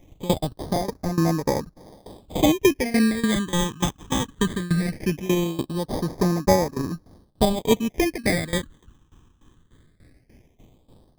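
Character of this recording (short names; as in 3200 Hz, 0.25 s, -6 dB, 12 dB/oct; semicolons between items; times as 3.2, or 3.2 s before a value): tremolo saw down 3.4 Hz, depth 90%; aliases and images of a low sample rate 1400 Hz, jitter 0%; phasing stages 8, 0.19 Hz, lowest notch 620–3000 Hz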